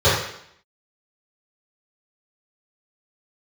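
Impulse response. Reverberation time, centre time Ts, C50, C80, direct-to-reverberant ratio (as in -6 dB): 0.70 s, 54 ms, 2.0 dB, 5.5 dB, -15.0 dB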